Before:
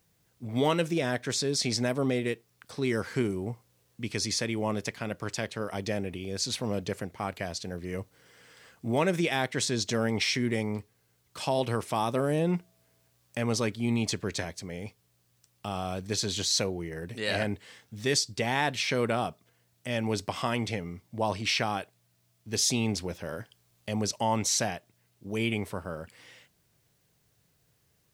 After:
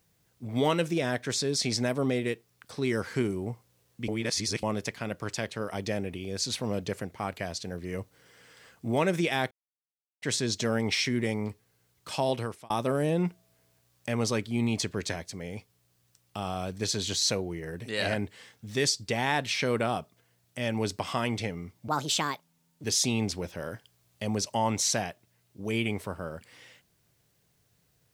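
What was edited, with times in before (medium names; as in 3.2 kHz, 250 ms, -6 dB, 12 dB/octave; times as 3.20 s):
4.08–4.63 s: reverse
9.51 s: insert silence 0.71 s
11.59–11.99 s: fade out
21.17–22.50 s: speed 139%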